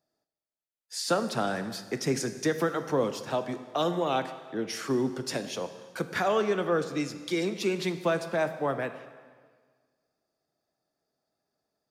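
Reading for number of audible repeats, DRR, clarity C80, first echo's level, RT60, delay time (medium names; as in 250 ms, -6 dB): no echo, 9.5 dB, 12.5 dB, no echo, 1.6 s, no echo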